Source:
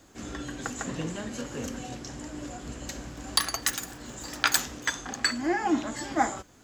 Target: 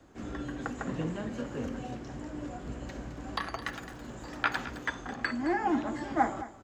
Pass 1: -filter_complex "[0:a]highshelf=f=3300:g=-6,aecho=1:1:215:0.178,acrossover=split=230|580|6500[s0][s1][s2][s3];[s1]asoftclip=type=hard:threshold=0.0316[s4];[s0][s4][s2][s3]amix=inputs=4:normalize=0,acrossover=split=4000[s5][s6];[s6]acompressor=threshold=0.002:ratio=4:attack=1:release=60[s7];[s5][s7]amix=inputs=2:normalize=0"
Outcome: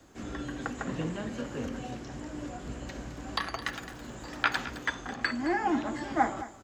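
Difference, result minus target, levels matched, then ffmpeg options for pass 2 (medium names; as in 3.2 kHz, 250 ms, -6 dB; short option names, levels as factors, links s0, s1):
4 kHz band +4.0 dB
-filter_complex "[0:a]highshelf=f=3300:g=-16,aecho=1:1:215:0.178,acrossover=split=230|580|6500[s0][s1][s2][s3];[s1]asoftclip=type=hard:threshold=0.0316[s4];[s0][s4][s2][s3]amix=inputs=4:normalize=0,acrossover=split=4000[s5][s6];[s6]acompressor=threshold=0.002:ratio=4:attack=1:release=60[s7];[s5][s7]amix=inputs=2:normalize=0"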